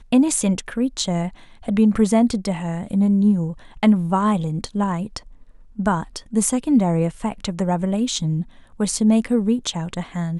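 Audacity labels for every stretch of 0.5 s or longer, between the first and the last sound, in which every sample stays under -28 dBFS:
5.180000	5.790000	silence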